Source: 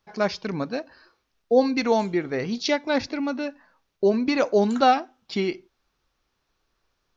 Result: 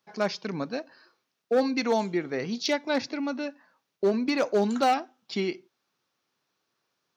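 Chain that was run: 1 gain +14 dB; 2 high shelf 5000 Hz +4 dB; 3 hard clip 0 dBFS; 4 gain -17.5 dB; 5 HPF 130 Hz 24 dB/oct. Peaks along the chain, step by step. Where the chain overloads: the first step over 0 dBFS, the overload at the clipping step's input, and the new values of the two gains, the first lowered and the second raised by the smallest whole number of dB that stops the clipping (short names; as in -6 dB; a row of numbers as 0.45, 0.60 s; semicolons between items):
+6.5, +7.0, 0.0, -17.5, -12.5 dBFS; step 1, 7.0 dB; step 1 +7 dB, step 4 -10.5 dB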